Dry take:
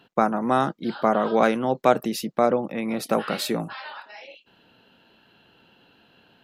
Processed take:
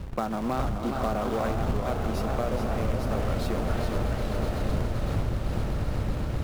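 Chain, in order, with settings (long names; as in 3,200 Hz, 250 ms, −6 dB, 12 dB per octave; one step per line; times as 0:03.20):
wind on the microphone 89 Hz −21 dBFS
in parallel at −6.5 dB: wave folding −19 dBFS
on the sum: dynamic equaliser 110 Hz, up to +5 dB, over −35 dBFS, Q 5.1
log-companded quantiser 4 bits
high-shelf EQ 2,900 Hz −8.5 dB
on a send: echo that builds up and dies away 128 ms, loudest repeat 8, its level −14 dB
on the sum: downward compressor, threshold −20 dBFS, peak gain reduction 14.5 dB
feedback echo with a swinging delay time 418 ms, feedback 65%, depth 137 cents, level −6 dB
level −5 dB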